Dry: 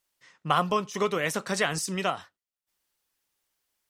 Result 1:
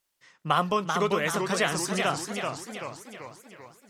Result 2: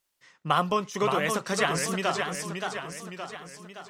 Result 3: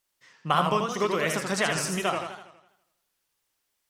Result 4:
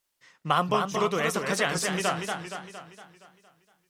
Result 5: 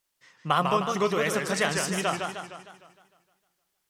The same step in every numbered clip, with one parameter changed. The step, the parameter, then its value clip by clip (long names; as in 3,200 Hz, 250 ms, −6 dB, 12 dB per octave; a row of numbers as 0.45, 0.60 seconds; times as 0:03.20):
feedback echo with a swinging delay time, delay time: 388, 570, 82, 232, 153 milliseconds